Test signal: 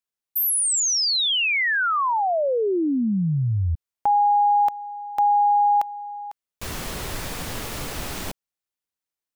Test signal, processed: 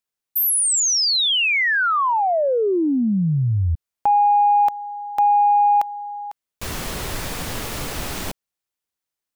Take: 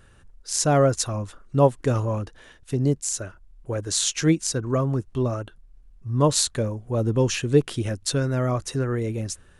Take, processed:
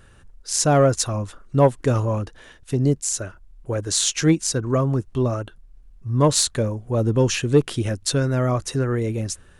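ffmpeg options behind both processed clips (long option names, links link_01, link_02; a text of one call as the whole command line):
ffmpeg -i in.wav -af "asoftclip=type=tanh:threshold=-7.5dB,volume=3dB" out.wav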